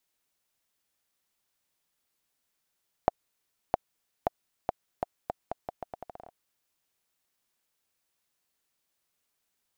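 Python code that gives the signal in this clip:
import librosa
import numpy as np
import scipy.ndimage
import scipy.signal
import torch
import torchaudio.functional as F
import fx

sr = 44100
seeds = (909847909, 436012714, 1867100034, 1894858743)

y = fx.bouncing_ball(sr, first_gap_s=0.66, ratio=0.8, hz=713.0, decay_ms=19.0, level_db=-7.5)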